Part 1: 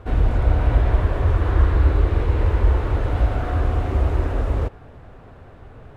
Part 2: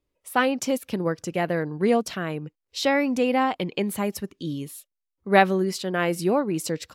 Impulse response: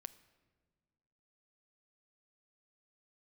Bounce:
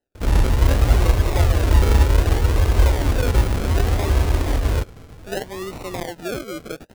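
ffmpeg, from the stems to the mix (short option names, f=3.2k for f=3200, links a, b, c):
-filter_complex "[0:a]adelay=150,volume=1.5dB[a];[1:a]acrossover=split=290 6900:gain=0.2 1 0.0891[b][c][d];[b][c][d]amix=inputs=3:normalize=0,acompressor=threshold=-25dB:ratio=6,volume=0.5dB[e];[a][e]amix=inputs=2:normalize=0,acrusher=samples=38:mix=1:aa=0.000001:lfo=1:lforange=22.8:lforate=0.65"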